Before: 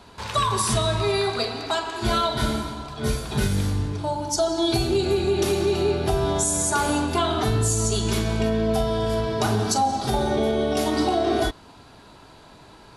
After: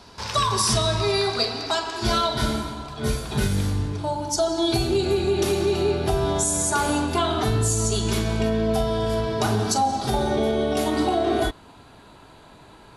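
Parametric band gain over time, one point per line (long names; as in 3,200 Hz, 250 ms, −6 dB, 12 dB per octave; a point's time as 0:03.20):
parametric band 5,300 Hz 0.43 octaves
0:02.06 +10.5 dB
0:02.71 0 dB
0:10.56 0 dB
0:11.00 −7.5 dB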